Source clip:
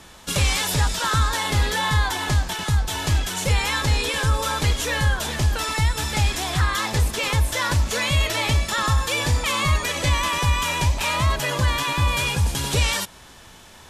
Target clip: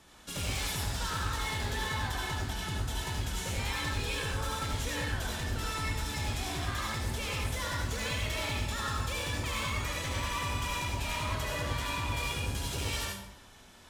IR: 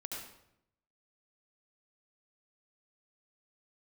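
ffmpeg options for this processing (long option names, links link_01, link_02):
-filter_complex "[0:a]asoftclip=type=hard:threshold=-20.5dB[link_01];[1:a]atrim=start_sample=2205[link_02];[link_01][link_02]afir=irnorm=-1:irlink=0,volume=-8.5dB"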